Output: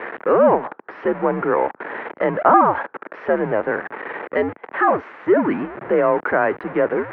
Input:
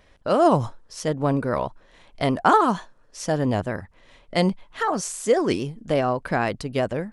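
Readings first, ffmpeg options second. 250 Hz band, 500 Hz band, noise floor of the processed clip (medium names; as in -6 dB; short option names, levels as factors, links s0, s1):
+1.5 dB, +5.5 dB, -55 dBFS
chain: -filter_complex "[0:a]aeval=exprs='val(0)+0.5*0.0562*sgn(val(0))':c=same,asplit=2[s0][s1];[s1]alimiter=limit=0.211:level=0:latency=1,volume=0.944[s2];[s0][s2]amix=inputs=2:normalize=0,aemphasis=mode=production:type=75fm,highpass=f=370:t=q:w=0.5412,highpass=f=370:t=q:w=1.307,lowpass=f=2000:t=q:w=0.5176,lowpass=f=2000:t=q:w=0.7071,lowpass=f=2000:t=q:w=1.932,afreqshift=-95"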